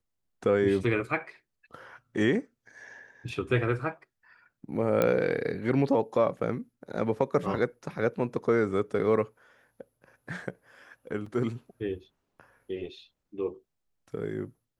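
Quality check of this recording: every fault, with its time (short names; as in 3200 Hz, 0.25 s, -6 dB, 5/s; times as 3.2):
5.02 pop -12 dBFS
11.26 gap 4.2 ms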